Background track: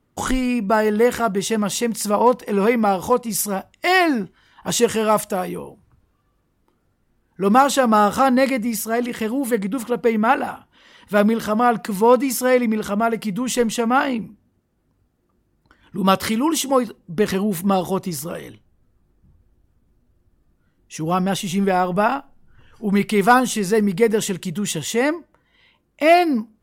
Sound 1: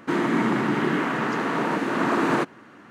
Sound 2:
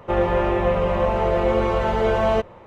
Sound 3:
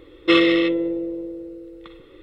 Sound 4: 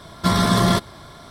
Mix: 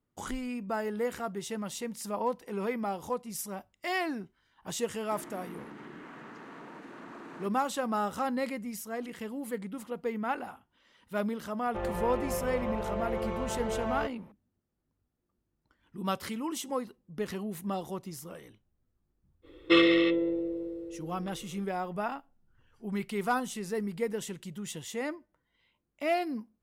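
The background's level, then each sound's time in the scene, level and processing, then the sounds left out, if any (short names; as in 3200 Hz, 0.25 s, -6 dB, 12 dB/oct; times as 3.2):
background track -15.5 dB
5.03 add 1 -18 dB + compressor 3:1, threshold -26 dBFS
11.66 add 2 -14 dB
19.42 add 3 -6 dB, fades 0.05 s
not used: 4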